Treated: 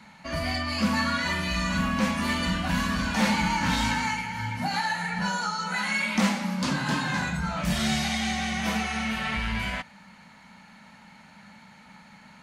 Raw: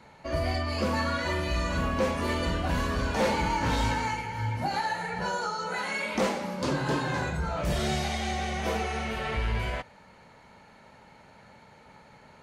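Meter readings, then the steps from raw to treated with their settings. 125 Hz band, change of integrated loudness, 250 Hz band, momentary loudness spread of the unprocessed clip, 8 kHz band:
0.0 dB, +2.5 dB, +5.5 dB, 4 LU, +5.5 dB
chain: FFT filter 130 Hz 0 dB, 200 Hz +14 dB, 410 Hz -9 dB, 750 Hz +3 dB, 1.9 kHz +9 dB; trim -3.5 dB

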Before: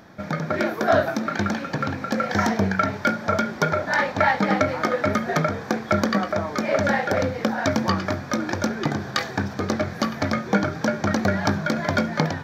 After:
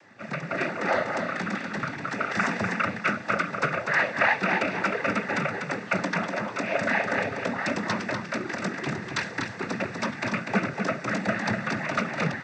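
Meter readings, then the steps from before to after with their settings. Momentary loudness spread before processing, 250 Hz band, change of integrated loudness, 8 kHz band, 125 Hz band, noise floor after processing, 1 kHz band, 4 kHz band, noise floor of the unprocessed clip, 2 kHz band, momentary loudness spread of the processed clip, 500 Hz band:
6 LU, -7.0 dB, -4.0 dB, -6.0 dB, -7.5 dB, -39 dBFS, -4.5 dB, -5.0 dB, -36 dBFS, 0.0 dB, 7 LU, -6.5 dB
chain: peaking EQ 2 kHz +9 dB 0.79 oct; noise-vocoded speech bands 16; delay 245 ms -6 dB; trim -7 dB

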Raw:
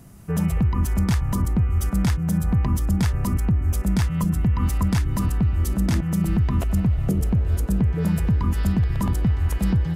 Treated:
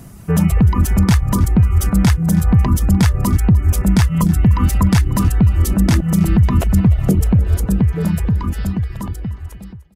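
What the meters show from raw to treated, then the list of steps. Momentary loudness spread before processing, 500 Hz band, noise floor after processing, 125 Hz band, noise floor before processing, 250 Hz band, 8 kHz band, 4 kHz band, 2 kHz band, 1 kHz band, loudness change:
1 LU, +7.0 dB, -36 dBFS, +7.0 dB, -27 dBFS, +7.0 dB, +8.5 dB, +8.0 dB, +7.5 dB, +7.5 dB, +7.0 dB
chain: fade out at the end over 2.80 s; reverb removal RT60 0.59 s; on a send: delay 300 ms -18.5 dB; on the sum: trim +9 dB

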